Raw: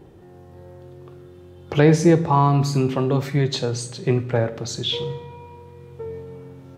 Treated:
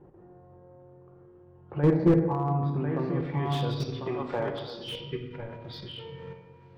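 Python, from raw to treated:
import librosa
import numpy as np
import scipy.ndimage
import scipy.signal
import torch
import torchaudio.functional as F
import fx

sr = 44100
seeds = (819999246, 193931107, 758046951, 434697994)

y = fx.freq_compress(x, sr, knee_hz=2500.0, ratio=1.5)
y = fx.peak_eq(y, sr, hz=1700.0, db=10.0, octaves=1.6, at=(5.49, 6.37))
y = y + 10.0 ** (-6.5 / 20.0) * np.pad(y, (int(1046 * sr / 1000.0), 0))[:len(y)]
y = fx.filter_sweep_lowpass(y, sr, from_hz=1200.0, to_hz=4100.0, start_s=2.75, end_s=3.6, q=1.2)
y = fx.level_steps(y, sr, step_db=12)
y = fx.graphic_eq(y, sr, hz=(125, 1000, 2000, 8000), db=(-9, 11, -3, 4), at=(4.01, 4.84))
y = fx.spec_erase(y, sr, start_s=5.12, length_s=0.22, low_hz=510.0, high_hz=1100.0)
y = fx.room_shoebox(y, sr, seeds[0], volume_m3=710.0, walls='mixed', distance_m=0.89)
y = fx.slew_limit(y, sr, full_power_hz=110.0)
y = y * 10.0 ** (-6.0 / 20.0)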